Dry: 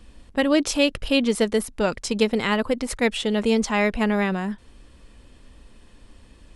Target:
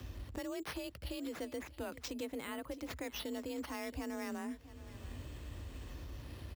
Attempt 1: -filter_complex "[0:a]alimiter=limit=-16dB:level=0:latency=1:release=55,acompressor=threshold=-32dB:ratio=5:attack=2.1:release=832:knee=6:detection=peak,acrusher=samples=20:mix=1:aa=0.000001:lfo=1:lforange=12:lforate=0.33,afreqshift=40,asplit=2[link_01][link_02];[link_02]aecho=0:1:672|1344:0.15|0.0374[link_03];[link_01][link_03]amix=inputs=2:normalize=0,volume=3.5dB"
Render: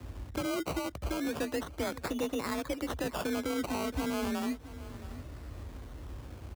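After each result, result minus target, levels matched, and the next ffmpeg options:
downward compressor: peak gain reduction −8.5 dB; sample-and-hold swept by an LFO: distortion +7 dB
-filter_complex "[0:a]alimiter=limit=-16dB:level=0:latency=1:release=55,acompressor=threshold=-42.5dB:ratio=5:attack=2.1:release=832:knee=6:detection=peak,acrusher=samples=20:mix=1:aa=0.000001:lfo=1:lforange=12:lforate=0.33,afreqshift=40,asplit=2[link_01][link_02];[link_02]aecho=0:1:672|1344:0.15|0.0374[link_03];[link_01][link_03]amix=inputs=2:normalize=0,volume=3.5dB"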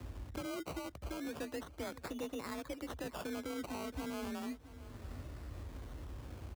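sample-and-hold swept by an LFO: distortion +7 dB
-filter_complex "[0:a]alimiter=limit=-16dB:level=0:latency=1:release=55,acompressor=threshold=-42.5dB:ratio=5:attack=2.1:release=832:knee=6:detection=peak,acrusher=samples=5:mix=1:aa=0.000001:lfo=1:lforange=3:lforate=0.33,afreqshift=40,asplit=2[link_01][link_02];[link_02]aecho=0:1:672|1344:0.15|0.0374[link_03];[link_01][link_03]amix=inputs=2:normalize=0,volume=3.5dB"

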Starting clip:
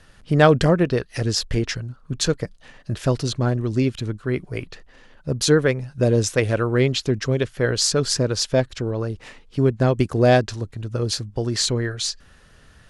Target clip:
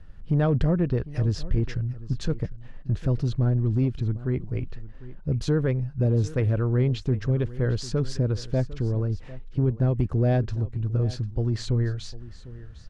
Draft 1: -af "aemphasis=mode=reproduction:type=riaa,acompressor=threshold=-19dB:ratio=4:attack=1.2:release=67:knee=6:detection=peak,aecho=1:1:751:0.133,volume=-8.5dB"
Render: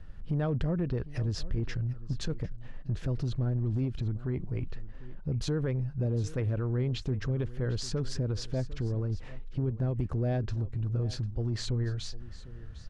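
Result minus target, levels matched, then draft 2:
downward compressor: peak gain reduction +8 dB
-af "aemphasis=mode=reproduction:type=riaa,acompressor=threshold=-8.5dB:ratio=4:attack=1.2:release=67:knee=6:detection=peak,aecho=1:1:751:0.133,volume=-8.5dB"

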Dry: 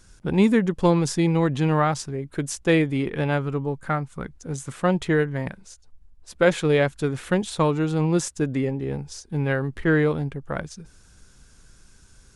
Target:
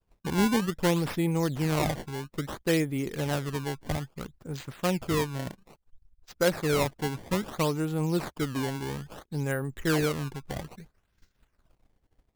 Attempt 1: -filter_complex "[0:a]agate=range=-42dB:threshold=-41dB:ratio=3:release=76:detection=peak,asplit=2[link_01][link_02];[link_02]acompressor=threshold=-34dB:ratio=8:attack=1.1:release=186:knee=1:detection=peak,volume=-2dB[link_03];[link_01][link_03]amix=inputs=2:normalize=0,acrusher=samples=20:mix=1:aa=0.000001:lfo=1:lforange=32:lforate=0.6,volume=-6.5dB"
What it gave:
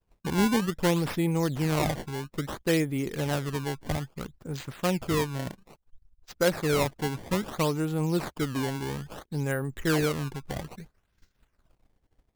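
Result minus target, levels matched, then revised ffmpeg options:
downward compressor: peak gain reduction −10.5 dB
-filter_complex "[0:a]agate=range=-42dB:threshold=-41dB:ratio=3:release=76:detection=peak,asplit=2[link_01][link_02];[link_02]acompressor=threshold=-46dB:ratio=8:attack=1.1:release=186:knee=1:detection=peak,volume=-2dB[link_03];[link_01][link_03]amix=inputs=2:normalize=0,acrusher=samples=20:mix=1:aa=0.000001:lfo=1:lforange=32:lforate=0.6,volume=-6.5dB"

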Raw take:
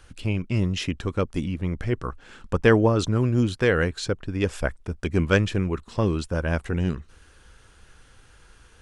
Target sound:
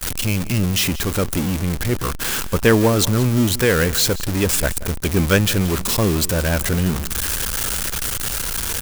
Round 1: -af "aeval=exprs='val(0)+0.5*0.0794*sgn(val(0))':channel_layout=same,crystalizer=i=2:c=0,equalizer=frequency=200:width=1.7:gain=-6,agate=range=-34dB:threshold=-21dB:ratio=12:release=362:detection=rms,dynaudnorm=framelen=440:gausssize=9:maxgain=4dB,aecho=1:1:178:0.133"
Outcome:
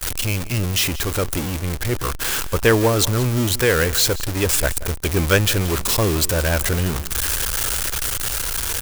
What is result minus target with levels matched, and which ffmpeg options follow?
250 Hz band −4.0 dB
-af "aeval=exprs='val(0)+0.5*0.0794*sgn(val(0))':channel_layout=same,crystalizer=i=2:c=0,equalizer=frequency=200:width=1.7:gain=2,agate=range=-34dB:threshold=-21dB:ratio=12:release=362:detection=rms,dynaudnorm=framelen=440:gausssize=9:maxgain=4dB,aecho=1:1:178:0.133"

